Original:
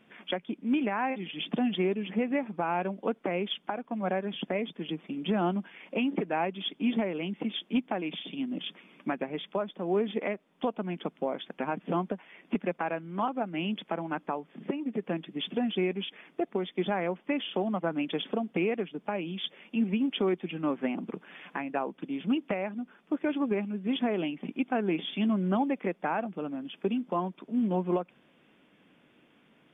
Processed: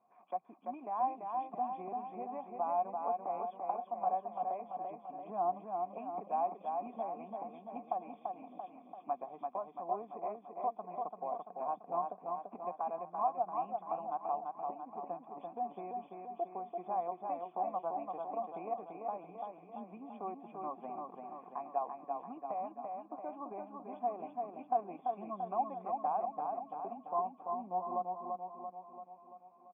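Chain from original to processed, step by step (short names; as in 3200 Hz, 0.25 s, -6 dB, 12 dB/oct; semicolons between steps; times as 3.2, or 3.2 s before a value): vocal tract filter a; feedback echo 0.339 s, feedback 57%, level -4 dB; gain +4 dB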